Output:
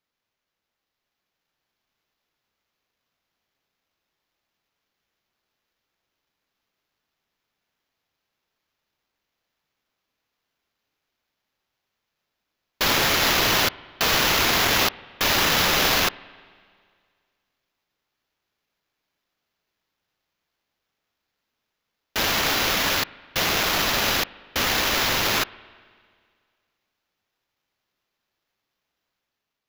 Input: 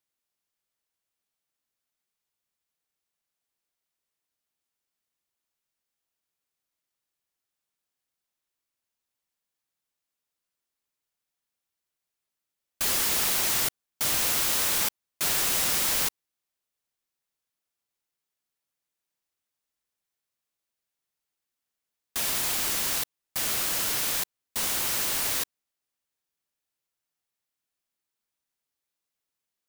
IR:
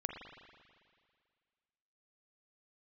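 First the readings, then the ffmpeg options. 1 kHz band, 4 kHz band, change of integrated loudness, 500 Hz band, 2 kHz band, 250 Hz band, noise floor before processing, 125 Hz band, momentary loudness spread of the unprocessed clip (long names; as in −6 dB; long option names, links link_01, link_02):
+12.0 dB, +9.0 dB, +4.0 dB, +12.0 dB, +11.5 dB, +12.0 dB, below −85 dBFS, +12.0 dB, 7 LU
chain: -filter_complex "[0:a]dynaudnorm=framelen=830:gausssize=3:maxgain=4dB,acrusher=samples=5:mix=1:aa=0.000001,asplit=2[link_01][link_02];[1:a]atrim=start_sample=2205[link_03];[link_02][link_03]afir=irnorm=-1:irlink=0,volume=-15dB[link_04];[link_01][link_04]amix=inputs=2:normalize=0"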